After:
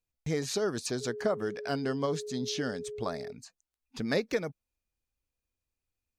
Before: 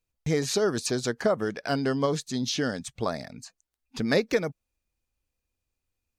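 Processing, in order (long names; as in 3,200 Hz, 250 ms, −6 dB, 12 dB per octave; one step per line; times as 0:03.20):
0:01.00–0:03.31: steady tone 420 Hz −32 dBFS
level −5.5 dB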